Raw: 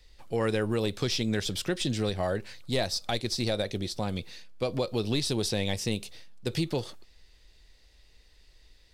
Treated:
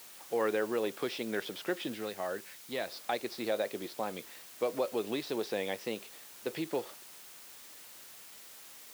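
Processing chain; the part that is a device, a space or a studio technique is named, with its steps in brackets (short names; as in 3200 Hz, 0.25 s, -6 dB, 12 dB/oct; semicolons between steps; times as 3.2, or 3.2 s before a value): wax cylinder (BPF 320–2100 Hz; wow and flutter; white noise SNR 16 dB); HPF 210 Hz 6 dB/oct; 1.94–2.88 bell 570 Hz -6 dB 2.4 oct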